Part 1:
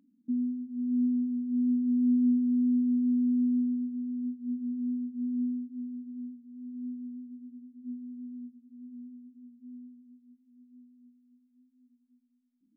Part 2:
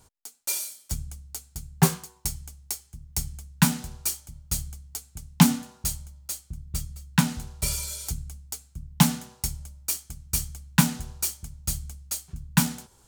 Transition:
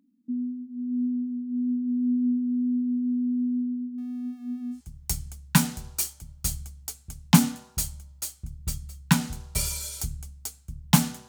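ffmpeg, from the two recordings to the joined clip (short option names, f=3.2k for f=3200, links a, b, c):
-filter_complex "[0:a]asettb=1/sr,asplit=3[a][b][c];[a]atrim=end=3.984[d];[b]atrim=start=3.98:end=4.81,asetpts=PTS-STARTPTS,afade=t=in:d=0.004:c=qsin,afade=t=out:st=0.826:d=0.004:c=qsin,aeval=exprs='val(0)+0.5*0.00299*sgn(val(0))':c=same[e];[c]atrim=start=4.806[f];[d][e]acrossfade=d=0.004:c1=hsin:c2=qsin[g];[g][f]acrossfade=d=0.004:c1=qsin:c2=hsin,apad=whole_dur=11.28,atrim=end=11.28,atrim=end=4.81,asetpts=PTS-STARTPTS[h];[1:a]atrim=start=2.78:end=9.35,asetpts=PTS-STARTPTS[i];[h][i]acrossfade=d=0.1:c1=tri:c2=tri"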